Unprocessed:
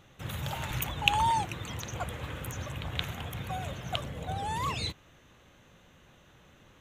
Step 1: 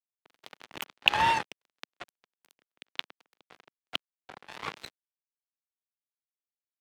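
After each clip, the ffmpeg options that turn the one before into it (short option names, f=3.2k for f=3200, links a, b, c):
-filter_complex "[0:a]acrusher=bits=3:mix=0:aa=0.5,acrossover=split=200 4600:gain=0.178 1 0.2[a][b][c];[a][b][c]amix=inputs=3:normalize=0,volume=3dB"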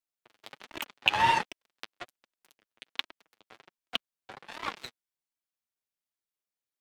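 -filter_complex "[0:a]flanger=delay=3:depth=6.7:regen=12:speed=1.3:shape=sinusoidal,asplit=2[a][b];[b]alimiter=limit=-13dB:level=0:latency=1:release=304,volume=2dB[c];[a][c]amix=inputs=2:normalize=0,volume=-2.5dB"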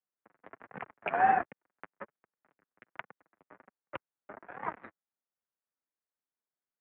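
-af "highpass=f=310:t=q:w=0.5412,highpass=f=310:t=q:w=1.307,lowpass=f=2k:t=q:w=0.5176,lowpass=f=2k:t=q:w=0.7071,lowpass=f=2k:t=q:w=1.932,afreqshift=-150"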